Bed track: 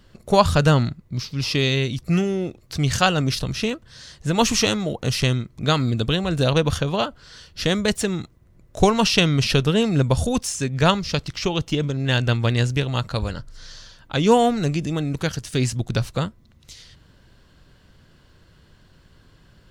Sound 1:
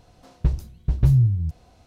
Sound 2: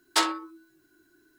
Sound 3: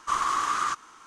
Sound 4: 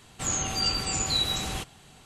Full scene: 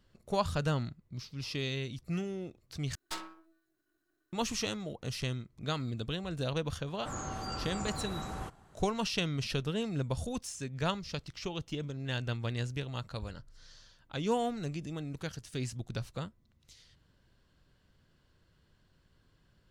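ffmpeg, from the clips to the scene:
ffmpeg -i bed.wav -i cue0.wav -i cue1.wav -i cue2.wav -i cue3.wav -filter_complex "[0:a]volume=-15dB[link_01];[2:a]aeval=exprs='if(lt(val(0),0),0.251*val(0),val(0))':channel_layout=same[link_02];[4:a]highshelf=frequency=1900:width_type=q:width=1.5:gain=-11[link_03];[link_01]asplit=2[link_04][link_05];[link_04]atrim=end=2.954[link_06];[link_02]atrim=end=1.38,asetpts=PTS-STARTPTS,volume=-13.5dB[link_07];[link_05]atrim=start=4.326[link_08];[link_03]atrim=end=2.05,asetpts=PTS-STARTPTS,volume=-6dB,afade=type=in:duration=0.004:curve=hsin,afade=type=out:start_time=2.046:duration=0.004:curve=hsin,adelay=6860[link_09];[link_06][link_07]acrossfade=duration=0.004:curve1=hsin:curve2=hsin[link_10];[link_10][link_08]acrossfade=duration=0.004:curve1=hsin:curve2=hsin[link_11];[link_11][link_09]amix=inputs=2:normalize=0" out.wav

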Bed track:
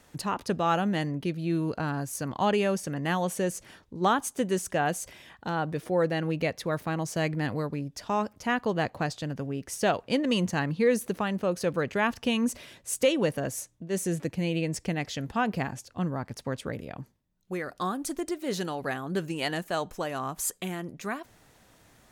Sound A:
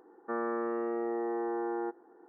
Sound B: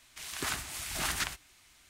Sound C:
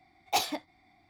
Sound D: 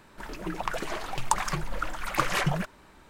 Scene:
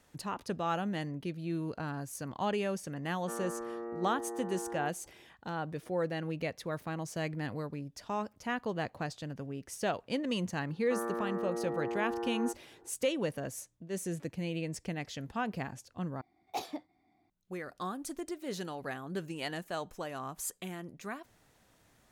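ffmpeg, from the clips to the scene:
ffmpeg -i bed.wav -i cue0.wav -i cue1.wav -i cue2.wav -filter_complex "[1:a]asplit=2[link_01][link_02];[0:a]volume=-7.5dB[link_03];[3:a]equalizer=frequency=310:width_type=o:width=2.9:gain=12[link_04];[link_03]asplit=2[link_05][link_06];[link_05]atrim=end=16.214[link_07];[link_04]atrim=end=1.09,asetpts=PTS-STARTPTS,volume=-15dB[link_08];[link_06]atrim=start=17.296[link_09];[link_01]atrim=end=2.28,asetpts=PTS-STARTPTS,volume=-7dB,afade=type=in:duration=0.004:curve=hsin,afade=type=out:start_time=2.276:duration=0.004:curve=hsin,adelay=2990[link_10];[link_02]atrim=end=2.28,asetpts=PTS-STARTPTS,volume=-3dB,afade=type=in:duration=0.004:curve=hsin,afade=type=out:start_time=2.276:duration=0.004:curve=hsin,adelay=10620[link_11];[link_07][link_08]acrossfade=duration=0.004:curve1=hsin:curve2=hsin[link_12];[link_12][link_09]acrossfade=duration=0.004:curve1=hsin:curve2=hsin[link_13];[link_13][link_10][link_11]amix=inputs=3:normalize=0" out.wav

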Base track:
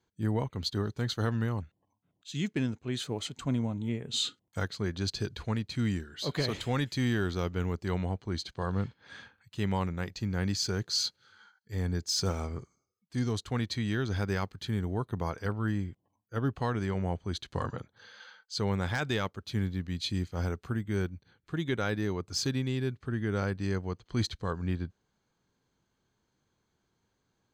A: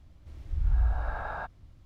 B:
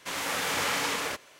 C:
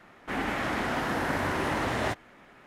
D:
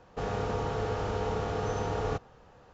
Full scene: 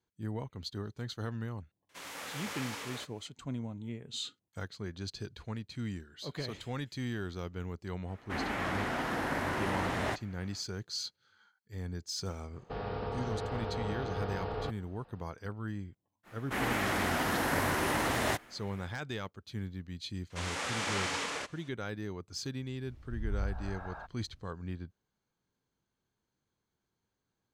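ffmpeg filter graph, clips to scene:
ffmpeg -i bed.wav -i cue0.wav -i cue1.wav -i cue2.wav -i cue3.wav -filter_complex "[2:a]asplit=2[link_01][link_02];[3:a]asplit=2[link_03][link_04];[0:a]volume=-8dB[link_05];[4:a]aresample=11025,aresample=44100[link_06];[link_04]aemphasis=mode=production:type=50kf[link_07];[link_02]lowpass=frequency=9100:width=0.5412,lowpass=frequency=9100:width=1.3066[link_08];[link_01]atrim=end=1.39,asetpts=PTS-STARTPTS,volume=-12.5dB,afade=type=in:duration=0.004:curve=hsin,afade=type=out:start_time=1.386:duration=0.004:curve=hsin,adelay=1890[link_09];[link_03]atrim=end=2.66,asetpts=PTS-STARTPTS,volume=-4.5dB,afade=type=in:duration=0.1,afade=type=out:start_time=2.56:duration=0.1,adelay=353682S[link_10];[link_06]atrim=end=2.73,asetpts=PTS-STARTPTS,volume=-5.5dB,afade=type=in:duration=0.004:curve=hsin,afade=type=out:start_time=2.726:duration=0.004:curve=hsin,adelay=12530[link_11];[link_07]atrim=end=2.66,asetpts=PTS-STARTPTS,volume=-2.5dB,afade=type=in:duration=0.05,afade=type=out:start_time=2.61:duration=0.05,adelay=16230[link_12];[link_08]atrim=end=1.39,asetpts=PTS-STARTPTS,volume=-5.5dB,afade=type=in:duration=0.004:curve=hsin,afade=type=out:start_time=1.386:duration=0.004:curve=hsin,adelay=20300[link_13];[1:a]atrim=end=1.85,asetpts=PTS-STARTPTS,volume=-9.5dB,afade=type=in:duration=0.004:curve=hsin,afade=type=out:start_time=1.846:duration=0.004:curve=hsin,adelay=996660S[link_14];[link_05][link_09][link_10][link_11][link_12][link_13][link_14]amix=inputs=7:normalize=0" out.wav

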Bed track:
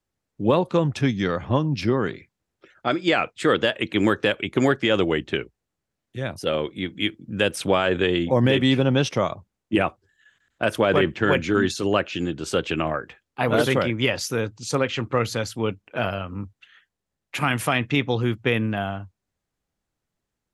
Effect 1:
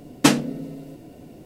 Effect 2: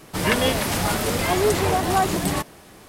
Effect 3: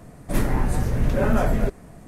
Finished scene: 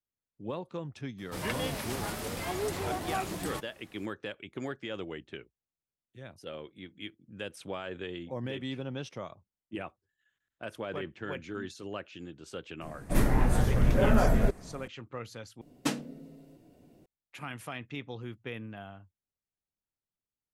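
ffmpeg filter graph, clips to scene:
ffmpeg -i bed.wav -i cue0.wav -i cue1.wav -i cue2.wav -filter_complex "[0:a]volume=-18dB,asplit=2[link_01][link_02];[link_01]atrim=end=15.614[link_03];[1:a]atrim=end=1.45,asetpts=PTS-STARTPTS,volume=-15dB[link_04];[link_02]atrim=start=17.056[link_05];[2:a]atrim=end=2.88,asetpts=PTS-STARTPTS,volume=-13.5dB,afade=type=in:duration=0.004:curve=hsin,afade=type=out:start_time=2.876:duration=0.004:curve=hsin,adelay=1180[link_06];[3:a]atrim=end=2.07,asetpts=PTS-STARTPTS,volume=-3dB,afade=type=in:duration=0.004:curve=hsin,afade=type=out:start_time=2.066:duration=0.004:curve=hsin,adelay=12810[link_07];[link_03][link_04]acrossfade=duration=0.004:curve1=hsin:curve2=hsin[link_08];[link_08][link_05]acrossfade=duration=0.004:curve1=hsin:curve2=hsin[link_09];[link_09][link_06][link_07]amix=inputs=3:normalize=0" out.wav

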